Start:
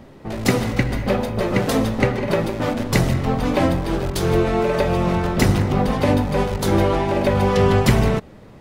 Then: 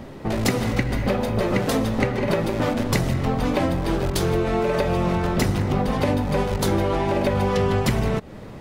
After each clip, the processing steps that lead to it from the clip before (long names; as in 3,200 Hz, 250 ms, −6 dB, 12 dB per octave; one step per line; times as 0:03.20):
downward compressor 4 to 1, threshold −25 dBFS, peak gain reduction 13.5 dB
level +5.5 dB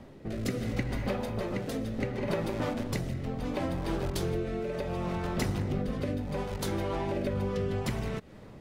rotating-speaker cabinet horn 0.7 Hz
level −8.5 dB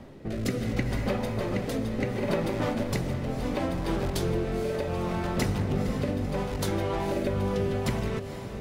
feedback delay with all-pass diffusion 489 ms, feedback 61%, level −10.5 dB
level +3 dB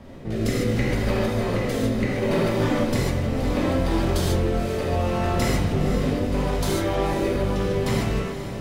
reverb whose tail is shaped and stops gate 170 ms flat, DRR −5 dB